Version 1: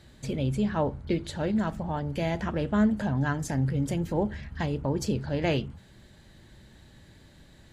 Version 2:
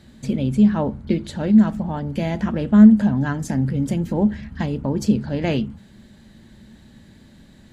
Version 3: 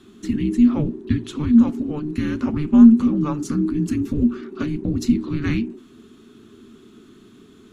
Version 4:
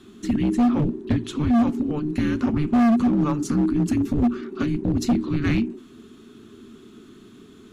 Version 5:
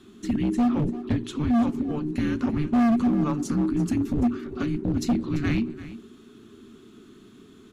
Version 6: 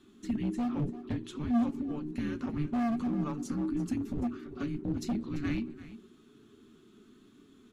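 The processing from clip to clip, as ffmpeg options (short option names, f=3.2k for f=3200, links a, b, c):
-af "equalizer=f=220:t=o:w=0.51:g=12.5,volume=2.5dB"
-af "afreqshift=-450"
-af "asoftclip=type=hard:threshold=-16dB,volume=1dB"
-af "aecho=1:1:340:0.168,volume=-3dB"
-af "flanger=delay=3.4:depth=3.7:regen=66:speed=0.54:shape=sinusoidal,volume=-4.5dB"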